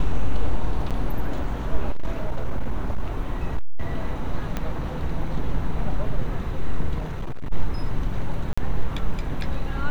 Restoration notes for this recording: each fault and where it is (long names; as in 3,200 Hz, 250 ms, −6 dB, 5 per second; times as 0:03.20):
0:00.90–0:00.91: drop-out 6.8 ms
0:01.90–0:03.86: clipping −16 dBFS
0:04.57: click −13 dBFS
0:06.98–0:07.53: clipping −23.5 dBFS
0:08.53–0:08.57: drop-out 45 ms